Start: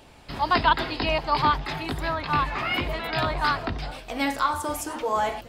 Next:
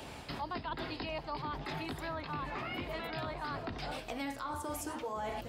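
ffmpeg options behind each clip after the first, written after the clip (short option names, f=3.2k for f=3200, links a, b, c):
-filter_complex "[0:a]areverse,acompressor=threshold=-32dB:ratio=6,areverse,highpass=56,acrossover=split=180|610[a][b][c];[a]acompressor=threshold=-52dB:ratio=4[d];[b]acompressor=threshold=-48dB:ratio=4[e];[c]acompressor=threshold=-47dB:ratio=4[f];[d][e][f]amix=inputs=3:normalize=0,volume=5dB"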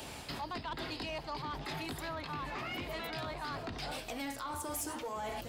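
-af "highshelf=f=4.3k:g=9.5,asoftclip=type=tanh:threshold=-32dB"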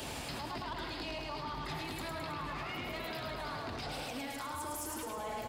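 -filter_complex "[0:a]asplit=2[a][b];[b]aecho=0:1:106|212|318|424|530|636|742:0.708|0.382|0.206|0.111|0.0602|0.0325|0.0176[c];[a][c]amix=inputs=2:normalize=0,alimiter=level_in=13.5dB:limit=-24dB:level=0:latency=1:release=108,volume=-13.5dB,flanger=delay=0.6:depth=8.2:regen=-74:speed=1.2:shape=sinusoidal,volume=9.5dB"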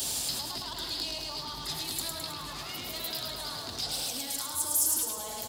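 -af "aexciter=amount=5:drive=7.6:freq=3.4k,volume=-2dB"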